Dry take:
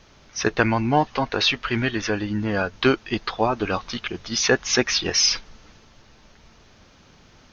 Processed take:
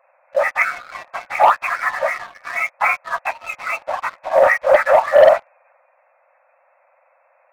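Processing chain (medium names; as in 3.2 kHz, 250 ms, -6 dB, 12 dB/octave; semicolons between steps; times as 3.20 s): spectrum inverted on a logarithmic axis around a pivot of 1.8 kHz; brick-wall FIR band-pass 510–2700 Hz; waveshaping leveller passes 2; trim +3 dB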